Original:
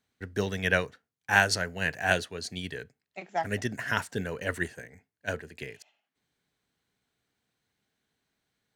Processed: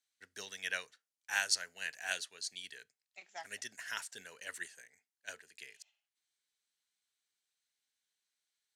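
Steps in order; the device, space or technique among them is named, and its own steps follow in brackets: piezo pickup straight into a mixer (LPF 8700 Hz 12 dB/oct; differentiator); gain +1 dB

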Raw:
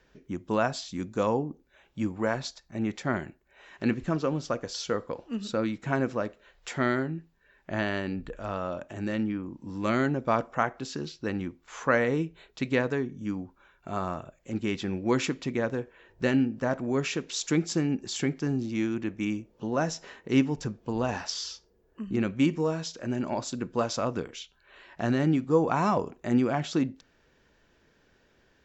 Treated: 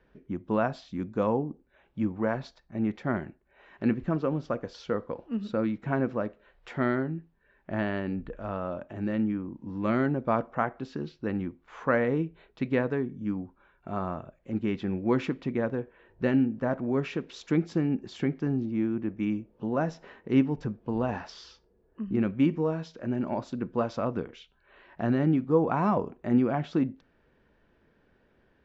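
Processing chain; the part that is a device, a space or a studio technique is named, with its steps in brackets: phone in a pocket (LPF 3800 Hz 12 dB/oct; bell 210 Hz +2.5 dB 0.4 oct; high shelf 2400 Hz -10 dB); 18.65–19.17 high shelf 2100 Hz -9.5 dB

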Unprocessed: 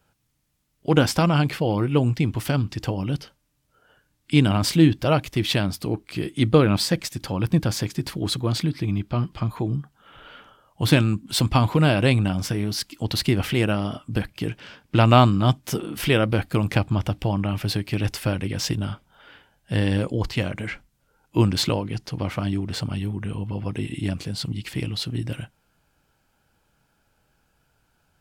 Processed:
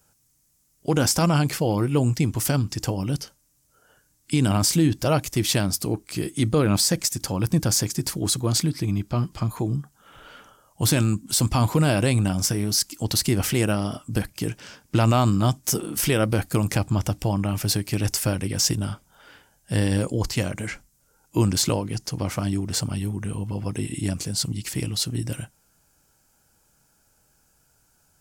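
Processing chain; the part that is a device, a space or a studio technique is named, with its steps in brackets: over-bright horn tweeter (resonant high shelf 4700 Hz +10.5 dB, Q 1.5; limiter -10.5 dBFS, peak gain reduction 7.5 dB)

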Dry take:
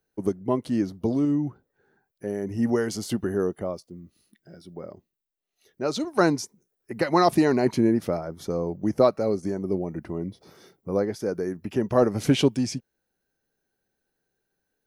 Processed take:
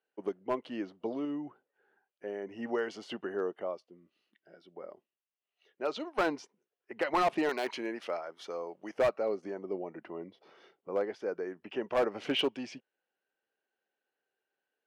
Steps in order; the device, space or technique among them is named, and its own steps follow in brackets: megaphone (BPF 470–2600 Hz; bell 2900 Hz +9 dB 0.4 oct; hard clip -19 dBFS, distortion -12 dB); 7.49–8.98 tilt +3.5 dB/oct; gain -3.5 dB

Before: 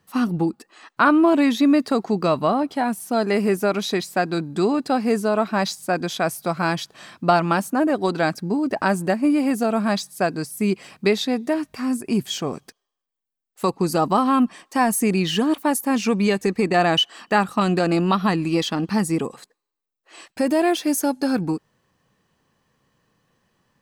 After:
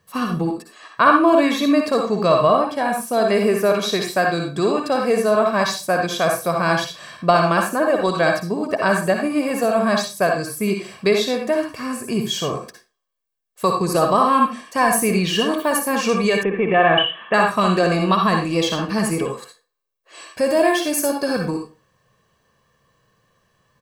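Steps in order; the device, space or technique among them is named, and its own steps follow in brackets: microphone above a desk (comb 1.8 ms, depth 52%; reverb RT60 0.30 s, pre-delay 53 ms, DRR 2 dB); 16.43–17.34 Chebyshev low-pass 3500 Hz, order 8; gain +1 dB

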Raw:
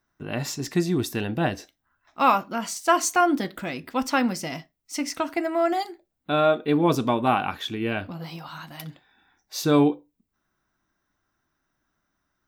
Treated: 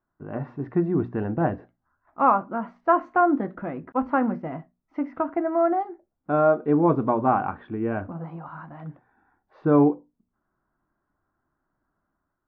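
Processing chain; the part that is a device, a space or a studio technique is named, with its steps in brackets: notches 60/120/180/240 Hz; 3.92–4.46 expander -29 dBFS; action camera in a waterproof case (LPF 1400 Hz 24 dB/oct; AGC gain up to 4.5 dB; gain -3 dB; AAC 48 kbps 22050 Hz)

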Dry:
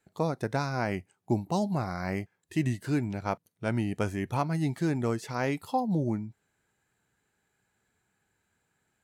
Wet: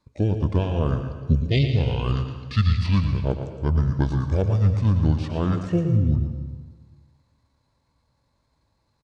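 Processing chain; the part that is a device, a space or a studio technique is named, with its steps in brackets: 1.44–3.22 band shelf 5400 Hz +12.5 dB; monster voice (pitch shift -7 st; formant shift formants -3 st; low shelf 190 Hz +8.5 dB; echo 0.114 s -9 dB; reverb RT60 1.4 s, pre-delay 0.119 s, DRR 9.5 dB); gain +2.5 dB

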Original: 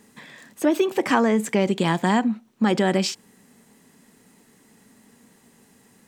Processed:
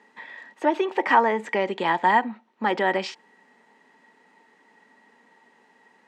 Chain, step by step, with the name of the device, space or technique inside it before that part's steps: tin-can telephone (BPF 420–3000 Hz; small resonant body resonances 900/1900 Hz, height 13 dB, ringing for 55 ms)

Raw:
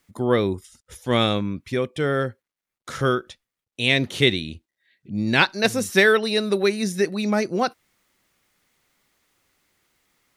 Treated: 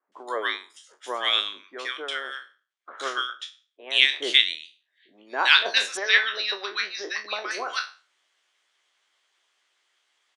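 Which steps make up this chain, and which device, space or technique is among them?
spectral trails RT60 0.37 s; 5.85–7.39 steep low-pass 5800 Hz 72 dB/oct; harmonic-percussive split harmonic -13 dB; phone speaker on a table (speaker cabinet 440–8300 Hz, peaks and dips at 490 Hz -6 dB, 1100 Hz +4 dB, 1600 Hz +5 dB, 3200 Hz +9 dB); bands offset in time lows, highs 0.12 s, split 1200 Hz

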